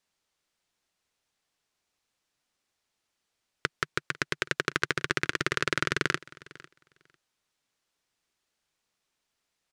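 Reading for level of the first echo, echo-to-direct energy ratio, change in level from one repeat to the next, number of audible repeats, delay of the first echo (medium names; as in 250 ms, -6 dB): -21.5 dB, -21.5 dB, no regular repeats, 1, 499 ms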